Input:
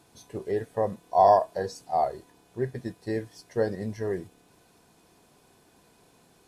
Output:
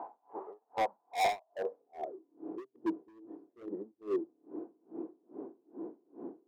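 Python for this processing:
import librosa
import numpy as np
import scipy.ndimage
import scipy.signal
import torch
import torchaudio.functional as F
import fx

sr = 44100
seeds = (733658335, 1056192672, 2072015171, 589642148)

y = x + 0.5 * 10.0 ** (-27.5 / 20.0) * np.sign(x)
y = fx.transient(y, sr, attack_db=9, sustain_db=-10)
y = scipy.signal.sosfilt(scipy.signal.cheby1(2, 1.0, [250.0, 1000.0], 'bandpass', fs=sr, output='sos'), y)
y = fx.filter_sweep_bandpass(y, sr, from_hz=830.0, to_hz=330.0, start_s=1.38, end_s=2.11, q=4.9)
y = np.clip(y, -10.0 ** (-30.0 / 20.0), 10.0 ** (-30.0 / 20.0))
y = y * 10.0 ** (-33 * (0.5 - 0.5 * np.cos(2.0 * np.pi * 2.4 * np.arange(len(y)) / sr)) / 20.0)
y = y * librosa.db_to_amplitude(5.0)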